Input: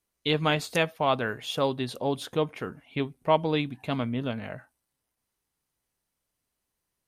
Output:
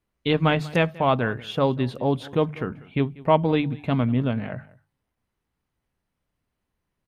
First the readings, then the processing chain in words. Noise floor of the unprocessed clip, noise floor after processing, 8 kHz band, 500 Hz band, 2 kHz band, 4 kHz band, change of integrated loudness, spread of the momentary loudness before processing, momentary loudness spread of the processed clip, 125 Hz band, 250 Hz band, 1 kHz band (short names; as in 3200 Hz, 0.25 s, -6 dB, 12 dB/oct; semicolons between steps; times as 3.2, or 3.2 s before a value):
-83 dBFS, -81 dBFS, n/a, +4.0 dB, +2.5 dB, -1.5 dB, +4.5 dB, 9 LU, 7 LU, +8.5 dB, +6.5 dB, +3.5 dB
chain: tone controls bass +7 dB, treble -14 dB; notches 50/100/150 Hz; on a send: echo 0.191 s -21.5 dB; on the sum: gain +3.5 dB